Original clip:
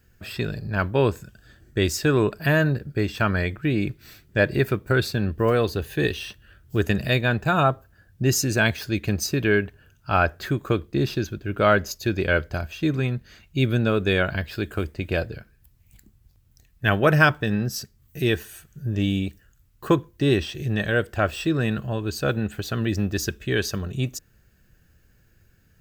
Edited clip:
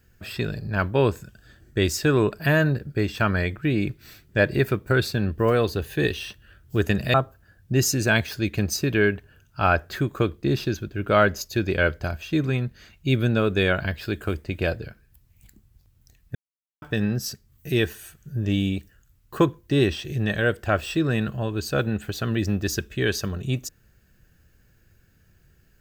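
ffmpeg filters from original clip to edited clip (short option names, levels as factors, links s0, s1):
-filter_complex "[0:a]asplit=4[s0][s1][s2][s3];[s0]atrim=end=7.142[s4];[s1]atrim=start=7.638:end=16.85,asetpts=PTS-STARTPTS,afade=t=out:st=9.208:d=0.004:c=hsin[s5];[s2]atrim=start=16.85:end=17.32,asetpts=PTS-STARTPTS,volume=0[s6];[s3]atrim=start=17.32,asetpts=PTS-STARTPTS,afade=t=in:d=0.004:c=hsin[s7];[s5][s6][s7]concat=n=3:v=0:a=1[s8];[s4][s8]acrossfade=d=0.004:c1=hsin:c2=hsin"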